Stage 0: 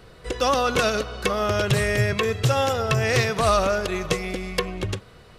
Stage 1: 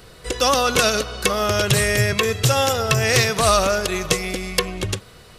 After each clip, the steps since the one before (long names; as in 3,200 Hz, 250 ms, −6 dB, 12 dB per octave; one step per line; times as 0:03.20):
high-shelf EQ 4,200 Hz +11.5 dB
level +2 dB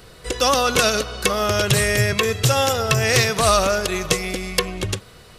no processing that can be heard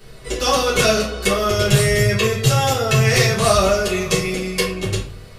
rectangular room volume 43 cubic metres, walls mixed, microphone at 1.5 metres
level −8 dB